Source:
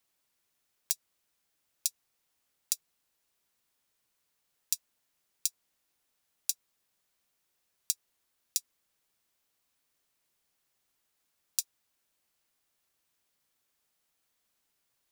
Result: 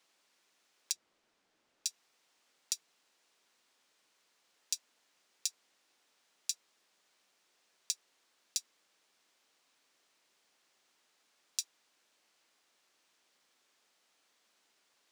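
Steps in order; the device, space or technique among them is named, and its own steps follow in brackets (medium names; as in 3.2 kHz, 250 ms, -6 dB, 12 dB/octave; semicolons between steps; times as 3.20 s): DJ mixer with the lows and highs turned down (three-band isolator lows -21 dB, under 210 Hz, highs -17 dB, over 7.7 kHz; peak limiter -22 dBFS, peak gain reduction 10 dB); 0.92–1.86 s: tilt EQ -2.5 dB/octave; trim +9 dB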